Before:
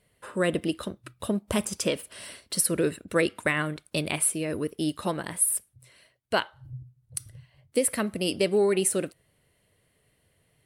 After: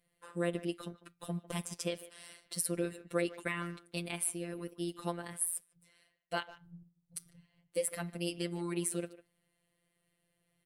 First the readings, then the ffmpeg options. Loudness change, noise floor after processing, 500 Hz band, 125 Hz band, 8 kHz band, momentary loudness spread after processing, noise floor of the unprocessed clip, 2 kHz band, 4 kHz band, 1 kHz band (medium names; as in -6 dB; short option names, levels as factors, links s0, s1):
-10.5 dB, -80 dBFS, -11.5 dB, -7.0 dB, -10.5 dB, 13 LU, -70 dBFS, -11.0 dB, -10.5 dB, -9.5 dB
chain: -filter_complex "[0:a]asplit=2[s0][s1];[s1]adelay=150,highpass=300,lowpass=3400,asoftclip=type=hard:threshold=0.119,volume=0.158[s2];[s0][s2]amix=inputs=2:normalize=0,afftfilt=real='hypot(re,im)*cos(PI*b)':imag='0':win_size=1024:overlap=0.75,volume=0.447"